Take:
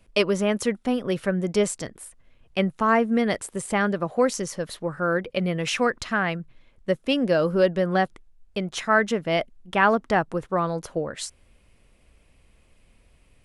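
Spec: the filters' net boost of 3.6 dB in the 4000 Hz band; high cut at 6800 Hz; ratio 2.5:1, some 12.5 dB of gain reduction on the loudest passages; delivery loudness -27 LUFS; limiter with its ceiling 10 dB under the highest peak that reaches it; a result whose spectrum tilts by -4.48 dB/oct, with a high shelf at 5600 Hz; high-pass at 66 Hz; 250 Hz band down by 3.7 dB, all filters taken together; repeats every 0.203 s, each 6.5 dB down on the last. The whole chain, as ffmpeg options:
-af "highpass=66,lowpass=6.8k,equalizer=f=250:t=o:g=-5,equalizer=f=4k:t=o:g=8,highshelf=f=5.6k:g=-6.5,acompressor=threshold=-34dB:ratio=2.5,alimiter=level_in=1dB:limit=-24dB:level=0:latency=1,volume=-1dB,aecho=1:1:203|406|609|812|1015|1218:0.473|0.222|0.105|0.0491|0.0231|0.0109,volume=8.5dB"

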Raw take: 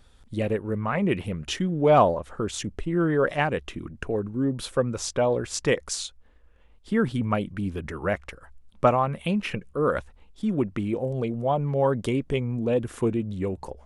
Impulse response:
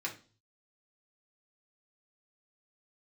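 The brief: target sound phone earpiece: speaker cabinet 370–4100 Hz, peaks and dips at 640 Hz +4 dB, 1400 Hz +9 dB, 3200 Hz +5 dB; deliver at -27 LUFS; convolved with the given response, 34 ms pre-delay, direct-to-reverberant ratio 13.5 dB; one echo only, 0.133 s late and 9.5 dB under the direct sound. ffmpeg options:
-filter_complex "[0:a]aecho=1:1:133:0.335,asplit=2[a][b];[1:a]atrim=start_sample=2205,adelay=34[c];[b][c]afir=irnorm=-1:irlink=0,volume=-16dB[d];[a][d]amix=inputs=2:normalize=0,highpass=370,equalizer=f=640:t=q:w=4:g=4,equalizer=f=1.4k:t=q:w=4:g=9,equalizer=f=3.2k:t=q:w=4:g=5,lowpass=f=4.1k:w=0.5412,lowpass=f=4.1k:w=1.3066,volume=-1.5dB"

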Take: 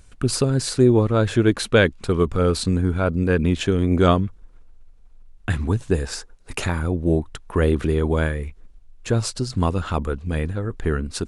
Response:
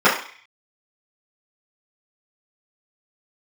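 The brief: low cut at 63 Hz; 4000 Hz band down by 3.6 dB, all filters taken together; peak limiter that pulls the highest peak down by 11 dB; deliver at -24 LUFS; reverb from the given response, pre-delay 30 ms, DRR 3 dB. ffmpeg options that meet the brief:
-filter_complex "[0:a]highpass=63,equalizer=f=4k:t=o:g=-4.5,alimiter=limit=-14.5dB:level=0:latency=1,asplit=2[a][b];[1:a]atrim=start_sample=2205,adelay=30[c];[b][c]afir=irnorm=-1:irlink=0,volume=-28dB[d];[a][d]amix=inputs=2:normalize=0,volume=1dB"

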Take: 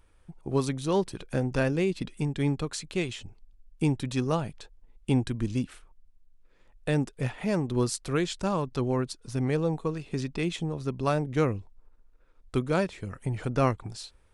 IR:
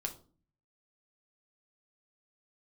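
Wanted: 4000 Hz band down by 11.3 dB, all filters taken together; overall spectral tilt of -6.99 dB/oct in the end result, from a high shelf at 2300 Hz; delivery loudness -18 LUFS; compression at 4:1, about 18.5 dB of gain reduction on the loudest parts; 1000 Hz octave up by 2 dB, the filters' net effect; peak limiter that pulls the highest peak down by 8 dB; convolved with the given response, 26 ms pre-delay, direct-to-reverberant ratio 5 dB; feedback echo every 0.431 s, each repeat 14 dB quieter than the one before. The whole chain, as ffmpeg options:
-filter_complex "[0:a]equalizer=f=1k:t=o:g=4.5,highshelf=f=2.3k:g=-8.5,equalizer=f=4k:t=o:g=-7,acompressor=threshold=-43dB:ratio=4,alimiter=level_in=11dB:limit=-24dB:level=0:latency=1,volume=-11dB,aecho=1:1:431|862:0.2|0.0399,asplit=2[a][b];[1:a]atrim=start_sample=2205,adelay=26[c];[b][c]afir=irnorm=-1:irlink=0,volume=-5dB[d];[a][d]amix=inputs=2:normalize=0,volume=27.5dB"

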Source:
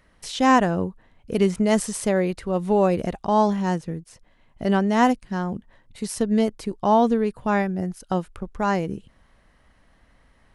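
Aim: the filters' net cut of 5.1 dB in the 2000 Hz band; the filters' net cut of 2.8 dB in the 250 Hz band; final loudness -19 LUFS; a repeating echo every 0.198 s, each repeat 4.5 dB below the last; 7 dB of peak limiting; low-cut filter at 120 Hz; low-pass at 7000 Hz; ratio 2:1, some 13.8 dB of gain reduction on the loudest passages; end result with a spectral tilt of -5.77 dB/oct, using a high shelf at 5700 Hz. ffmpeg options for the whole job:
-af "highpass=120,lowpass=7k,equalizer=f=250:t=o:g=-3,equalizer=f=2k:t=o:g=-5.5,highshelf=f=5.7k:g=-7.5,acompressor=threshold=-41dB:ratio=2,alimiter=level_in=3.5dB:limit=-24dB:level=0:latency=1,volume=-3.5dB,aecho=1:1:198|396|594|792|990|1188|1386|1584|1782:0.596|0.357|0.214|0.129|0.0772|0.0463|0.0278|0.0167|0.01,volume=18dB"

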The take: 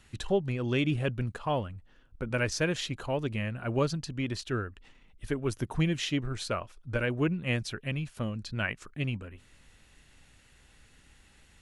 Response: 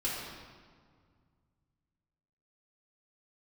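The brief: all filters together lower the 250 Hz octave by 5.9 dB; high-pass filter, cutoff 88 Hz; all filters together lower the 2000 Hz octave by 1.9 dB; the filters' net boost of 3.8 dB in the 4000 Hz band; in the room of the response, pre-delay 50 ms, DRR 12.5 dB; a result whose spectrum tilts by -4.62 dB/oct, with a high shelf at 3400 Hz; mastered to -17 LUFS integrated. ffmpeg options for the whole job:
-filter_complex "[0:a]highpass=88,equalizer=f=250:t=o:g=-8.5,equalizer=f=2k:t=o:g=-4,highshelf=f=3.4k:g=-3,equalizer=f=4k:t=o:g=8.5,asplit=2[a][b];[1:a]atrim=start_sample=2205,adelay=50[c];[b][c]afir=irnorm=-1:irlink=0,volume=-18dB[d];[a][d]amix=inputs=2:normalize=0,volume=16.5dB"

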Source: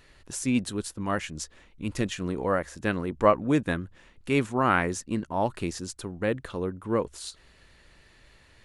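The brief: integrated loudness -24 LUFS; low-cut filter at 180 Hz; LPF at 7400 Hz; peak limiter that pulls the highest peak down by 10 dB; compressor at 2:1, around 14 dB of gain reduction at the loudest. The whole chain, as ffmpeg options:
-af "highpass=180,lowpass=7.4k,acompressor=threshold=-41dB:ratio=2,volume=18.5dB,alimiter=limit=-10.5dB:level=0:latency=1"

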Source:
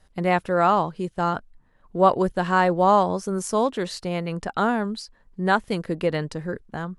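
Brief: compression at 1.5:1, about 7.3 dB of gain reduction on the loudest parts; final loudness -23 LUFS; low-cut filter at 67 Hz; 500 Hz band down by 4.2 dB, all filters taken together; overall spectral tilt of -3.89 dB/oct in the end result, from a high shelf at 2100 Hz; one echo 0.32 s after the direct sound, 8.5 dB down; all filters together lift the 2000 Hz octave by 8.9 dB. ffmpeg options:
-af "highpass=67,equalizer=f=500:t=o:g=-6.5,equalizer=f=2k:t=o:g=8.5,highshelf=f=2.1k:g=7.5,acompressor=threshold=-31dB:ratio=1.5,aecho=1:1:320:0.376,volume=3.5dB"

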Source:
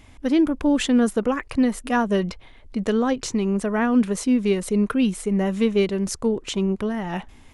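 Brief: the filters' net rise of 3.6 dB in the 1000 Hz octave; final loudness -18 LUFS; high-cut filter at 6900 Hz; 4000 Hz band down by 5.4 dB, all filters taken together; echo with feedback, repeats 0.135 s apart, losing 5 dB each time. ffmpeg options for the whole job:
-af "lowpass=6.9k,equalizer=f=1k:t=o:g=5,equalizer=f=4k:t=o:g=-8,aecho=1:1:135|270|405|540|675|810|945:0.562|0.315|0.176|0.0988|0.0553|0.031|0.0173,volume=2.5dB"

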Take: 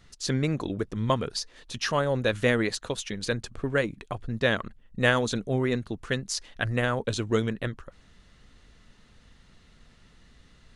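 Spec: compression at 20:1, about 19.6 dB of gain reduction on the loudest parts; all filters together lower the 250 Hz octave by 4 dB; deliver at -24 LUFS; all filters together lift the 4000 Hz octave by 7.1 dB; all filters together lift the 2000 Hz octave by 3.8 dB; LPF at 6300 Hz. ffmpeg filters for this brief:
-af "lowpass=6.3k,equalizer=f=250:t=o:g=-5,equalizer=f=2k:t=o:g=3,equalizer=f=4k:t=o:g=8.5,acompressor=threshold=-34dB:ratio=20,volume=15dB"

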